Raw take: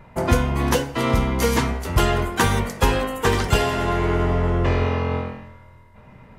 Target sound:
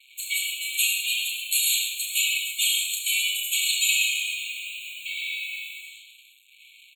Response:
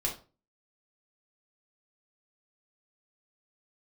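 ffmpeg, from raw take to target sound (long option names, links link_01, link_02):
-filter_complex "[0:a]alimiter=limit=-11.5dB:level=0:latency=1:release=31,aecho=1:1:30|69|119.7|185.6|271.3:0.631|0.398|0.251|0.158|0.1,flanger=delay=5.7:depth=5.2:regen=-3:speed=0.86:shape=sinusoidal,acontrast=89,asplit=2[link_01][link_02];[1:a]atrim=start_sample=2205,adelay=92[link_03];[link_02][link_03]afir=irnorm=-1:irlink=0,volume=-11dB[link_04];[link_01][link_04]amix=inputs=2:normalize=0,asetrate=40517,aresample=44100,highshelf=frequency=4900:gain=12,acrusher=bits=5:mix=0:aa=0.5,afftfilt=real='re*eq(mod(floor(b*sr/1024/2200),2),1)':imag='im*eq(mod(floor(b*sr/1024/2200),2),1)':win_size=1024:overlap=0.75"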